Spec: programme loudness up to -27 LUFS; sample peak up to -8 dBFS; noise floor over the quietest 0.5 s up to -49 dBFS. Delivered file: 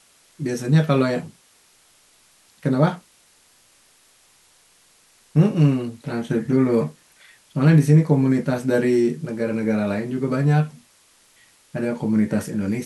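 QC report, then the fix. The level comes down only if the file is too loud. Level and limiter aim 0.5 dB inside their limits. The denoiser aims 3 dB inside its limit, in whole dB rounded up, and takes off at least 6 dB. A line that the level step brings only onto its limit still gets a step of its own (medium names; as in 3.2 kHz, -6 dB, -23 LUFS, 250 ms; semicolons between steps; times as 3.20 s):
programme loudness -20.5 LUFS: fail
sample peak -3.5 dBFS: fail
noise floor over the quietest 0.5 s -57 dBFS: pass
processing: trim -7 dB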